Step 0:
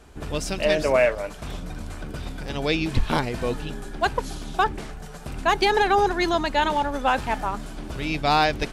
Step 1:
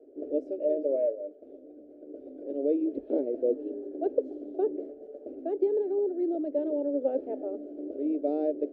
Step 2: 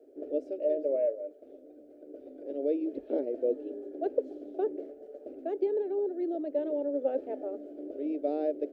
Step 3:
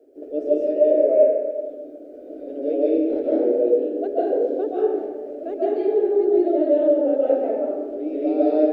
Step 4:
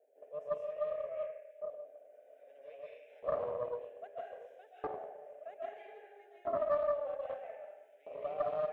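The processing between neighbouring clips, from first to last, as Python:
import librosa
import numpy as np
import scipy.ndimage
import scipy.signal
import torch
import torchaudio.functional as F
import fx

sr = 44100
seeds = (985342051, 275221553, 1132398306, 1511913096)

y1 = scipy.signal.sosfilt(scipy.signal.ellip(3, 1.0, 40, [280.0, 590.0], 'bandpass', fs=sr, output='sos'), x)
y1 = fx.rider(y1, sr, range_db=4, speed_s=0.5)
y2 = fx.curve_eq(y1, sr, hz=(310.0, 730.0, 1800.0), db=(0, 4, 10))
y2 = F.gain(torch.from_numpy(y2), -4.0).numpy()
y3 = fx.rev_freeverb(y2, sr, rt60_s=1.3, hf_ratio=0.65, predelay_ms=110, drr_db=-8.0)
y3 = F.gain(torch.from_numpy(y3), 3.0).numpy()
y4 = fx.filter_lfo_highpass(y3, sr, shape='saw_up', hz=0.62, low_hz=650.0, high_hz=2200.0, q=0.94)
y4 = fx.fixed_phaser(y4, sr, hz=1200.0, stages=6)
y4 = fx.doppler_dist(y4, sr, depth_ms=0.3)
y4 = F.gain(torch.from_numpy(y4), -7.0).numpy()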